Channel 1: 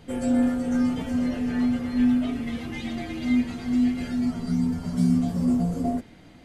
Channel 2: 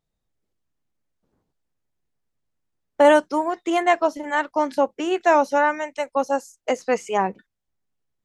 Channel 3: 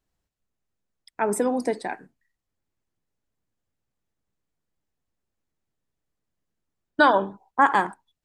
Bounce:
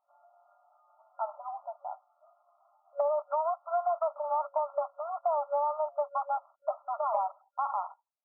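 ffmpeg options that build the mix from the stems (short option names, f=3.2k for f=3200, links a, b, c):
-filter_complex "[0:a]acompressor=threshold=-24dB:ratio=4,volume=-19dB[a];[1:a]asoftclip=type=tanh:threshold=-20dB,acrusher=bits=7:dc=4:mix=0:aa=0.000001,volume=3dB[b];[2:a]alimiter=limit=-10.5dB:level=0:latency=1:release=25,acontrast=50,volume=-12dB[c];[a][b][c]amix=inputs=3:normalize=0,afftfilt=real='re*between(b*sr/4096,560,1400)':imag='im*between(b*sr/4096,560,1400)':win_size=4096:overlap=0.75,acompressor=threshold=-26dB:ratio=6"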